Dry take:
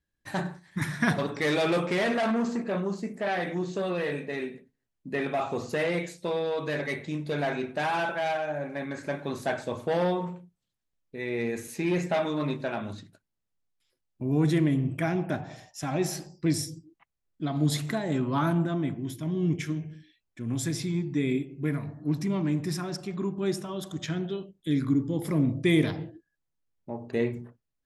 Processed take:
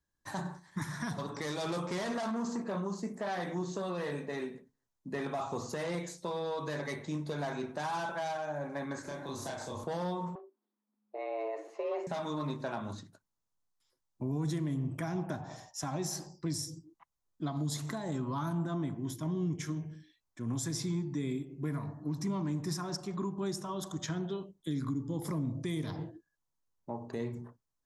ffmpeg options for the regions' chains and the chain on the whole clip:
-filter_complex "[0:a]asettb=1/sr,asplit=3[s0][s1][s2];[s0]atrim=end=9.024[s3];[s1]atrim=start=9.02:end=9.84,asetpts=PTS-STARTPTS,afade=t=in:d=0.004:c=qsin,afade=t=out:st=0.816:d=0.004:c=qsin,bandreject=f=68.98:t=h:w=4,bandreject=f=137.96:t=h:w=4,bandreject=f=206.94:t=h:w=4,bandreject=f=275.92:t=h:w=4,bandreject=f=344.9:t=h:w=4,bandreject=f=413.88:t=h:w=4,bandreject=f=482.86:t=h:w=4,bandreject=f=551.84:t=h:w=4,bandreject=f=620.82:t=h:w=4,bandreject=f=689.8:t=h:w=4,bandreject=f=758.78:t=h:w=4,bandreject=f=827.76:t=h:w=4,bandreject=f=896.74:t=h:w=4,bandreject=f=965.72:t=h:w=4,bandreject=f=1034.7:t=h:w=4,bandreject=f=1103.68:t=h:w=4,bandreject=f=1172.66:t=h:w=4,bandreject=f=1241.64:t=h:w=4,bandreject=f=1310.62:t=h:w=4,bandreject=f=1379.6:t=h:w=4,bandreject=f=1448.58:t=h:w=4,bandreject=f=1517.56:t=h:w=4,bandreject=f=1586.54:t=h:w=4,bandreject=f=1655.52:t=h:w=4,bandreject=f=1724.5:t=h:w=4,bandreject=f=1793.48:t=h:w=4,bandreject=f=1862.46:t=h:w=4,bandreject=f=1931.44:t=h:w=4,bandreject=f=2000.42:t=h:w=4,bandreject=f=2069.4:t=h:w=4,bandreject=f=2138.38:t=h:w=4,bandreject=f=2207.36:t=h:w=4,bandreject=f=2276.34:t=h:w=4,bandreject=f=2345.32:t=h:w=4,bandreject=f=2414.3:t=h:w=4,bandreject=f=2483.28:t=h:w=4,bandreject=f=2552.26:t=h:w=4,bandreject=f=2621.24:t=h:w=4,acrossover=split=150|3000[s4][s5][s6];[s5]acompressor=threshold=0.01:ratio=4:attack=3.2:release=140:knee=2.83:detection=peak[s7];[s4][s7][s6]amix=inputs=3:normalize=0,asplit=2[s8][s9];[s9]adelay=30,volume=0.794[s10];[s8][s10]amix=inputs=2:normalize=0,atrim=end_sample=36162[s11];[s2]atrim=start=9.836[s12];[s3][s11]acrossfade=d=0.004:c1=hsin:c2=qsin[s13];[s13][s12]acrossfade=d=0.004:c1=qsin:c2=hsin,asettb=1/sr,asplit=3[s14][s15][s16];[s14]atrim=end=10.354[s17];[s15]atrim=start=10.35:end=12.07,asetpts=PTS-STARTPTS,afade=t=in:d=0.004:c=qsin,afade=t=out:st=1.716:d=0.004:c=qsin,lowpass=1800,afreqshift=210[s18];[s16]atrim=start=12.066[s19];[s17][s18]acrossfade=d=0.004:c1=hsin:c2=qsin[s20];[s20][s19]acrossfade=d=0.004:c1=qsin:c2=hsin,equalizer=f=1000:t=o:w=0.67:g=9,equalizer=f=2500:t=o:w=0.67:g=-7,equalizer=f=6300:t=o:w=0.67:g=6,acrossover=split=220|3000[s21][s22][s23];[s22]acompressor=threshold=0.0224:ratio=2.5[s24];[s21][s24][s23]amix=inputs=3:normalize=0,alimiter=limit=0.0708:level=0:latency=1:release=194,volume=0.708"

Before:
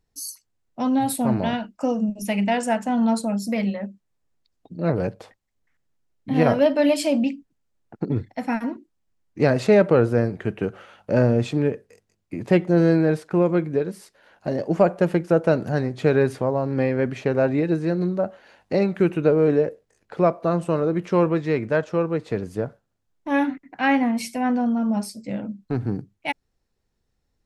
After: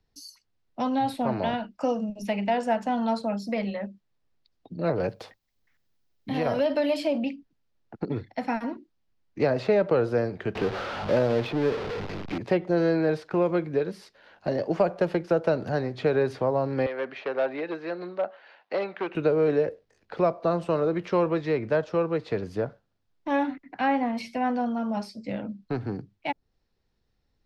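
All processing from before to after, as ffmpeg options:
-filter_complex "[0:a]asettb=1/sr,asplit=3[s0][s1][s2];[s0]atrim=end=5.094[s3];[s1]atrim=start=5.09:end=7.18,asetpts=PTS-STARTPTS,afade=t=in:d=0.004:c=qsin,afade=t=out:st=2.086:d=0.004:c=qsin,acompressor=threshold=0.141:ratio=6:attack=3.2:release=140:knee=1:detection=peak,aemphasis=mode=production:type=50fm[s4];[s2]atrim=start=7.176[s5];[s3][s4]acrossfade=d=0.004:c1=hsin:c2=qsin[s6];[s6][s5]acrossfade=d=0.004:c1=qsin:c2=hsin,asettb=1/sr,asplit=3[s7][s8][s9];[s7]atrim=end=10.554[s10];[s8]atrim=start=10.55:end=12.38,asetpts=PTS-STARTPTS,afade=t=in:d=0.004:c=qsin,afade=t=out:st=1.826:d=0.004:c=qsin,aeval=exprs='val(0)+0.5*0.0596*sgn(val(0))':c=same,adynamicsmooth=sensitivity=5:basefreq=890[s11];[s9]atrim=start=12.376[s12];[s10][s11]acrossfade=d=0.004:c1=hsin:c2=qsin[s13];[s13][s12]acrossfade=d=0.004:c1=qsin:c2=hsin,asettb=1/sr,asplit=3[s14][s15][s16];[s14]atrim=end=16.864[s17];[s15]atrim=start=16.86:end=19.15,asetpts=PTS-STARTPTS,afade=t=in:d=0.004:c=qsin,afade=t=out:st=2.286:d=0.004:c=qsin,volume=5.01,asoftclip=hard,volume=0.2,highpass=620,lowpass=3300[s18];[s16]atrim=start=19.146[s19];[s17][s18]acrossfade=d=0.004:c1=hsin:c2=qsin[s20];[s20][s19]acrossfade=d=0.004:c1=qsin:c2=hsin,highshelf=f=6200:t=q:w=1.5:g=-9.5,acrossover=split=110|360|1200|3300[s21][s22][s23][s24][s25];[s21]acompressor=threshold=0.01:ratio=4[s26];[s22]acompressor=threshold=0.0178:ratio=4[s27];[s23]acompressor=threshold=0.1:ratio=4[s28];[s24]acompressor=threshold=0.01:ratio=4[s29];[s25]acompressor=threshold=0.00398:ratio=4[s30];[s26][s27][s28][s29][s30]amix=inputs=5:normalize=0"

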